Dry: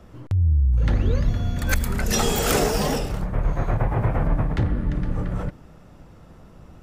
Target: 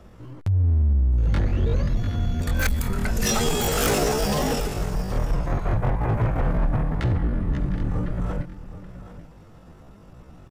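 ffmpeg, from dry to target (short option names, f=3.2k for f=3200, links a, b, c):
-af "aecho=1:1:503:0.2,atempo=0.65,asoftclip=type=hard:threshold=-16dB"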